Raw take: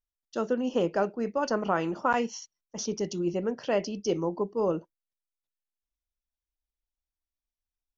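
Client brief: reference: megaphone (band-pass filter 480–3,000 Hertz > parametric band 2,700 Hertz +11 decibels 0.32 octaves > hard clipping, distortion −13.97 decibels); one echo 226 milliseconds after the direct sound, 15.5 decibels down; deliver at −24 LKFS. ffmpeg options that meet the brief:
ffmpeg -i in.wav -af "highpass=480,lowpass=3000,equalizer=frequency=2700:width_type=o:width=0.32:gain=11,aecho=1:1:226:0.168,asoftclip=type=hard:threshold=-22dB,volume=9dB" out.wav

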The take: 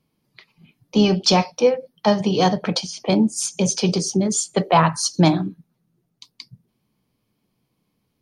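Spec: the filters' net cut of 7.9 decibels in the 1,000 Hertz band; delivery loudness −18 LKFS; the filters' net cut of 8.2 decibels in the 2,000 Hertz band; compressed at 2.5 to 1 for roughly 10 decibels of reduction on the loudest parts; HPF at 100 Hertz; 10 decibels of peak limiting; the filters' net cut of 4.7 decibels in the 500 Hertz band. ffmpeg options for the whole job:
ffmpeg -i in.wav -af "highpass=100,equalizer=frequency=500:width_type=o:gain=-3.5,equalizer=frequency=1000:width_type=o:gain=-7.5,equalizer=frequency=2000:width_type=o:gain=-8.5,acompressor=threshold=-28dB:ratio=2.5,volume=15.5dB,alimiter=limit=-9dB:level=0:latency=1" out.wav

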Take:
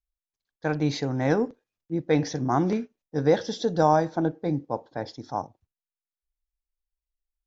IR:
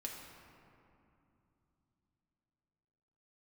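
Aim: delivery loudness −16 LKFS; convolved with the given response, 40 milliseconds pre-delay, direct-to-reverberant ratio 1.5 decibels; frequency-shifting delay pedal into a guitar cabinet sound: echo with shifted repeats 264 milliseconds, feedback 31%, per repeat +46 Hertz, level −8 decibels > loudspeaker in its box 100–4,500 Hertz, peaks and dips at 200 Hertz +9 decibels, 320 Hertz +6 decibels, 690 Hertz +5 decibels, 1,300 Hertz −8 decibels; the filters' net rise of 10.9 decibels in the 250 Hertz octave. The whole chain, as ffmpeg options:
-filter_complex "[0:a]equalizer=frequency=250:width_type=o:gain=7.5,asplit=2[link_01][link_02];[1:a]atrim=start_sample=2205,adelay=40[link_03];[link_02][link_03]afir=irnorm=-1:irlink=0,volume=0dB[link_04];[link_01][link_04]amix=inputs=2:normalize=0,asplit=5[link_05][link_06][link_07][link_08][link_09];[link_06]adelay=264,afreqshift=46,volume=-8dB[link_10];[link_07]adelay=528,afreqshift=92,volume=-18.2dB[link_11];[link_08]adelay=792,afreqshift=138,volume=-28.3dB[link_12];[link_09]adelay=1056,afreqshift=184,volume=-38.5dB[link_13];[link_05][link_10][link_11][link_12][link_13]amix=inputs=5:normalize=0,highpass=100,equalizer=frequency=200:width_type=q:width=4:gain=9,equalizer=frequency=320:width_type=q:width=4:gain=6,equalizer=frequency=690:width_type=q:width=4:gain=5,equalizer=frequency=1300:width_type=q:width=4:gain=-8,lowpass=frequency=4500:width=0.5412,lowpass=frequency=4500:width=1.3066"

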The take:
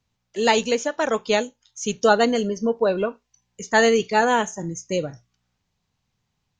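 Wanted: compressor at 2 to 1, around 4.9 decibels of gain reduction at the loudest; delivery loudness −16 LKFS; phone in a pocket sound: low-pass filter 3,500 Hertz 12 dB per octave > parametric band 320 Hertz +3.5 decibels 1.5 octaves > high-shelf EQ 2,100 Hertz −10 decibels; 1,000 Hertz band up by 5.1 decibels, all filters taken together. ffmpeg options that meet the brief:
ffmpeg -i in.wav -af "equalizer=frequency=1000:width_type=o:gain=7.5,acompressor=threshold=-17dB:ratio=2,lowpass=3500,equalizer=frequency=320:width_type=o:width=1.5:gain=3.5,highshelf=frequency=2100:gain=-10,volume=5.5dB" out.wav

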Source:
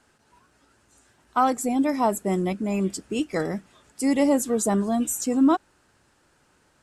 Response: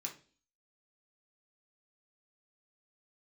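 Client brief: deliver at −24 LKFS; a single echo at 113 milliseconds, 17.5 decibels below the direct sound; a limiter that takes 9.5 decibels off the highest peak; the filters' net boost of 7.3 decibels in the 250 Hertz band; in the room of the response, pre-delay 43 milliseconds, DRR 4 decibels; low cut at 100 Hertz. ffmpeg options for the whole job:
-filter_complex "[0:a]highpass=100,equalizer=frequency=250:width_type=o:gain=8.5,alimiter=limit=-13dB:level=0:latency=1,aecho=1:1:113:0.133,asplit=2[link_01][link_02];[1:a]atrim=start_sample=2205,adelay=43[link_03];[link_02][link_03]afir=irnorm=-1:irlink=0,volume=-2.5dB[link_04];[link_01][link_04]amix=inputs=2:normalize=0,volume=-4.5dB"

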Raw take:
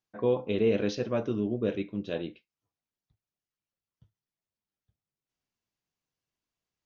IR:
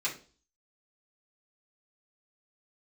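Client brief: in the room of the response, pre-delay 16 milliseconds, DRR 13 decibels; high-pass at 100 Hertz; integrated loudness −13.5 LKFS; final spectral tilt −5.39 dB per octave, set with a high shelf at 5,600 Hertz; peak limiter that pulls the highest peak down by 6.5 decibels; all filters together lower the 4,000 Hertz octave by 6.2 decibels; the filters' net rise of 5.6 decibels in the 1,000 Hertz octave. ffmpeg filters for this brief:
-filter_complex "[0:a]highpass=100,equalizer=frequency=1000:width_type=o:gain=7.5,equalizer=frequency=4000:width_type=o:gain=-6.5,highshelf=frequency=5600:gain=-5.5,alimiter=limit=-20dB:level=0:latency=1,asplit=2[link_01][link_02];[1:a]atrim=start_sample=2205,adelay=16[link_03];[link_02][link_03]afir=irnorm=-1:irlink=0,volume=-19dB[link_04];[link_01][link_04]amix=inputs=2:normalize=0,volume=18dB"

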